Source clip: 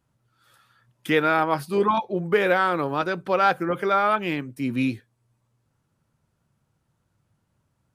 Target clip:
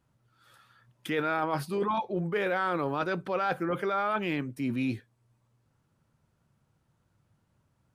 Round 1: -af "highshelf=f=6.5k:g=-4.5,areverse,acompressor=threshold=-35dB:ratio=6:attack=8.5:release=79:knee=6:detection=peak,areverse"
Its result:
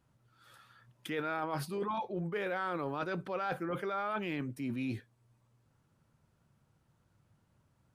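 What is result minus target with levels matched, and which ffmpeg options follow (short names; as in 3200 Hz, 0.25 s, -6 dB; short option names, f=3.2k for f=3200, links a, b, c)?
compressor: peak gain reduction +6.5 dB
-af "highshelf=f=6.5k:g=-4.5,areverse,acompressor=threshold=-27dB:ratio=6:attack=8.5:release=79:knee=6:detection=peak,areverse"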